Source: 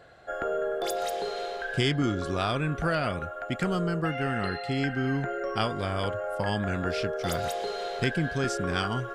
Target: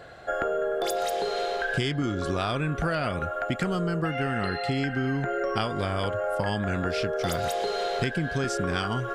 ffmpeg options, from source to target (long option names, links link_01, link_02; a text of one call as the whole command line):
ffmpeg -i in.wav -af "acompressor=threshold=-32dB:ratio=5,volume=7.5dB" out.wav